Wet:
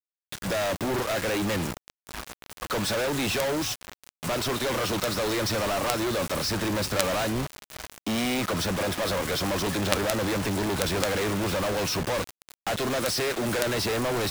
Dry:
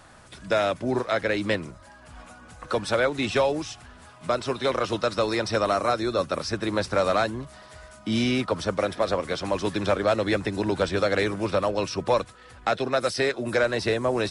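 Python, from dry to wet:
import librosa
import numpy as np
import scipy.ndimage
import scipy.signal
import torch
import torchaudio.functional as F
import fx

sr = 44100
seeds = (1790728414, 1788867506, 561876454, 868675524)

y = fx.quant_companded(x, sr, bits=2)
y = y * 10.0 ** (-1.0 / 20.0)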